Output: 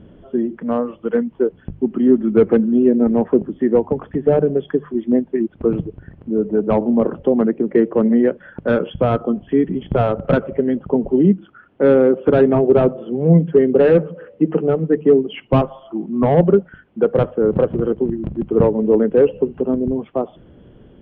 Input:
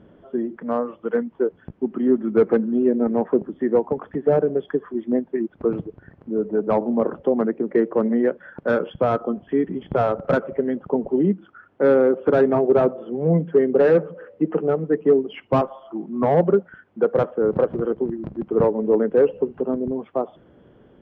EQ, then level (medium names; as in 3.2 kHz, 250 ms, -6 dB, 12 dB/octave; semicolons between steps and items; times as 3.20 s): tilt EQ -3.5 dB/octave; peaking EQ 3 kHz +14 dB 1.2 oct; hum notches 50/100/150 Hz; -1.0 dB